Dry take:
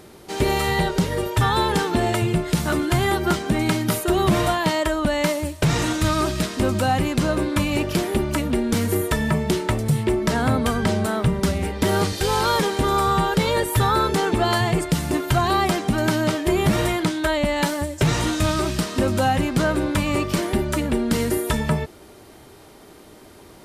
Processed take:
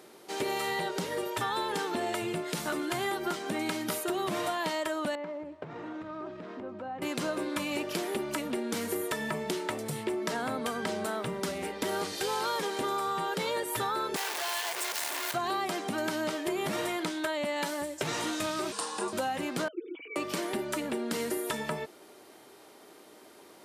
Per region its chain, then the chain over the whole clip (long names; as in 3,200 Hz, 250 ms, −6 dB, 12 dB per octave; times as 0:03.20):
0:05.15–0:07.02: Bessel low-pass filter 1,100 Hz + downward compressor, threshold −27 dBFS
0:14.16–0:15.34: sign of each sample alone + high-pass filter 790 Hz + notch filter 1,300 Hz, Q 9
0:18.72–0:19.13: frequency shifter −160 Hz + loudspeaker in its box 260–9,900 Hz, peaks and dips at 970 Hz +9 dB, 2,200 Hz −9 dB, 3,200 Hz −3 dB, 9,000 Hz +10 dB
0:19.68–0:20.16: three sine waves on the formant tracks + formant resonators in series i + comb filter 6.2 ms, depth 67%
whole clip: high-pass filter 300 Hz 12 dB per octave; downward compressor, threshold −22 dBFS; level −6 dB